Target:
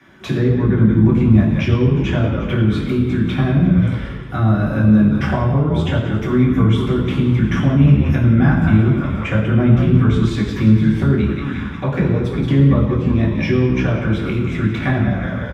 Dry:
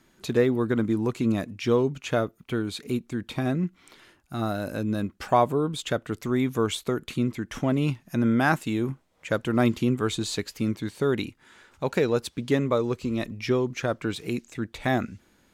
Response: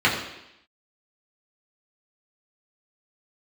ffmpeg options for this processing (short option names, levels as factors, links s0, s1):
-filter_complex "[0:a]asplit=7[s0][s1][s2][s3][s4][s5][s6];[s1]adelay=178,afreqshift=-67,volume=0.282[s7];[s2]adelay=356,afreqshift=-134,volume=0.158[s8];[s3]adelay=534,afreqshift=-201,volume=0.0881[s9];[s4]adelay=712,afreqshift=-268,volume=0.0495[s10];[s5]adelay=890,afreqshift=-335,volume=0.0279[s11];[s6]adelay=1068,afreqshift=-402,volume=0.0155[s12];[s0][s7][s8][s9][s10][s11][s12]amix=inputs=7:normalize=0,acrossover=split=220[s13][s14];[s14]acompressor=threshold=0.0158:ratio=10[s15];[s13][s15]amix=inputs=2:normalize=0[s16];[1:a]atrim=start_sample=2205,asetrate=33516,aresample=44100[s17];[s16][s17]afir=irnorm=-1:irlink=0,volume=0.562"